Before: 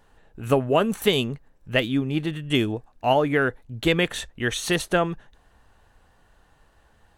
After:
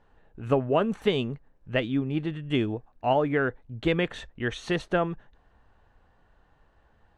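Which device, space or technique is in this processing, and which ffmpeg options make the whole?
through cloth: -af "lowpass=6600,highshelf=f=3600:g=-12.5,volume=0.708"

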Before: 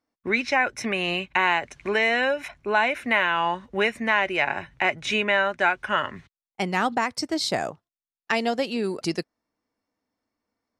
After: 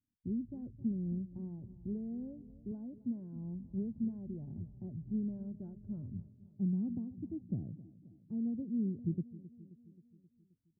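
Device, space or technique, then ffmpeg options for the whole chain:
the neighbour's flat through the wall: -filter_complex "[0:a]asettb=1/sr,asplit=3[s0][s1][s2];[s0]atrim=end=2.714[s3];[s1]atrim=start=2.71:end=3.36,asetpts=PTS-STARTPTS,afade=t=in:d=0.004:c=qsin,afade=t=out:st=0.646:d=0.004:c=qsin,highpass=140[s4];[s2]atrim=start=3.356[s5];[s3][s4]acrossfade=d=0.004:c1=hsin:c2=qsin[s6];[s6][s5]acrossfade=d=0.004:c1=qsin:c2=hsin,lowpass=f=220:w=0.5412,lowpass=f=220:w=1.3066,equalizer=f=100:t=o:w=0.74:g=7,aecho=1:1:265|530|795|1060|1325|1590:0.141|0.0833|0.0492|0.029|0.0171|0.0101,volume=0.891"

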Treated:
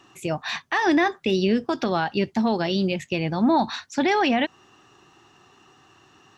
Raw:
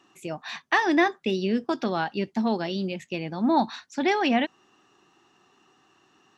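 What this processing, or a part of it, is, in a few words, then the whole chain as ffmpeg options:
car stereo with a boomy subwoofer: -af "lowshelf=f=150:t=q:w=1.5:g=6.5,alimiter=limit=0.112:level=0:latency=1:release=106,volume=2.24"

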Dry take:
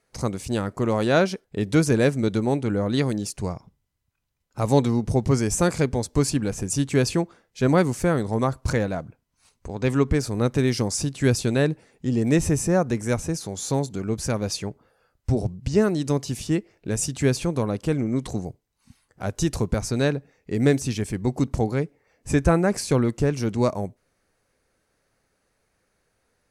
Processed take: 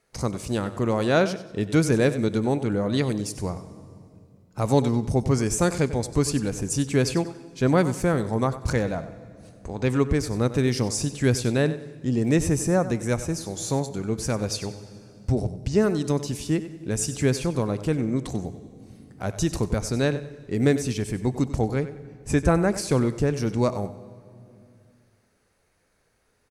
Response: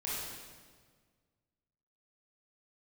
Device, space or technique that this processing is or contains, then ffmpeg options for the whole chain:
ducked reverb: -filter_complex "[0:a]aecho=1:1:95|190|285:0.2|0.0559|0.0156,asplit=3[s0][s1][s2];[1:a]atrim=start_sample=2205[s3];[s1][s3]afir=irnorm=-1:irlink=0[s4];[s2]apad=whole_len=1181258[s5];[s4][s5]sidechaincompress=threshold=0.0224:ratio=10:attack=21:release=946,volume=0.562[s6];[s0][s6]amix=inputs=2:normalize=0,volume=0.841"

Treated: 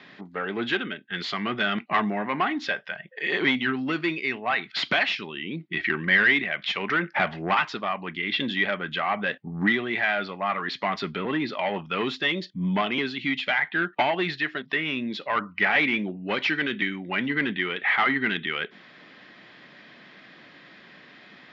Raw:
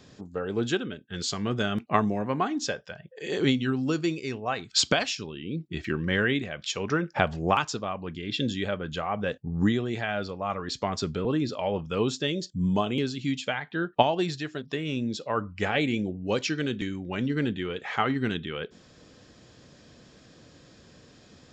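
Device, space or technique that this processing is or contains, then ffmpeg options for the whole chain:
overdrive pedal into a guitar cabinet: -filter_complex "[0:a]asplit=2[s0][s1];[s1]highpass=f=720:p=1,volume=15.8,asoftclip=type=tanh:threshold=0.668[s2];[s0][s2]amix=inputs=2:normalize=0,lowpass=f=6400:p=1,volume=0.501,highpass=100,equalizer=f=100:t=q:w=4:g=-9,equalizer=f=190:t=q:w=4:g=4,equalizer=f=490:t=q:w=4:g=-9,equalizer=f=2000:t=q:w=4:g=10,lowpass=f=3700:w=0.5412,lowpass=f=3700:w=1.3066,volume=0.355"

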